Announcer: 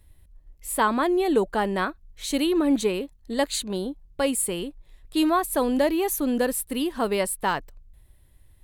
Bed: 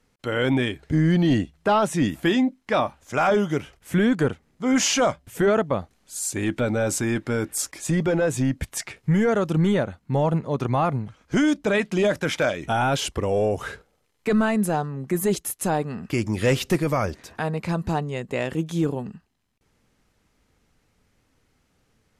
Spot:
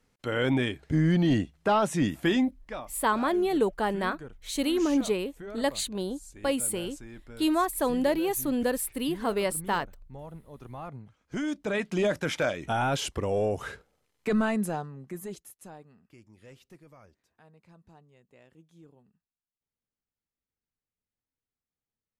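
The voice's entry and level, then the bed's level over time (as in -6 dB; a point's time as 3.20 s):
2.25 s, -3.5 dB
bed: 2.43 s -4 dB
2.92 s -22 dB
10.52 s -22 dB
11.97 s -5 dB
14.52 s -5 dB
16.22 s -31 dB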